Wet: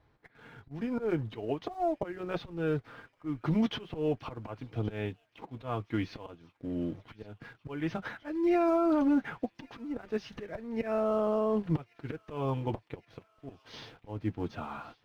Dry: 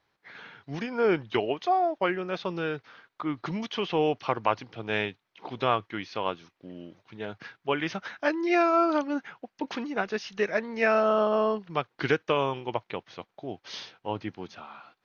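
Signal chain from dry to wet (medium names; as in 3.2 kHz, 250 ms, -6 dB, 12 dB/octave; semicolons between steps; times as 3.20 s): slow attack 682 ms; in parallel at -10 dB: companded quantiser 4-bit; on the sum: tilt EQ -3.5 dB/octave; comb of notches 190 Hz; peak limiter -24 dBFS, peak gain reduction 13 dB; on a send: feedback echo behind a high-pass 1118 ms, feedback 70%, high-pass 2.3 kHz, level -19 dB; on the sum: trim +4 dB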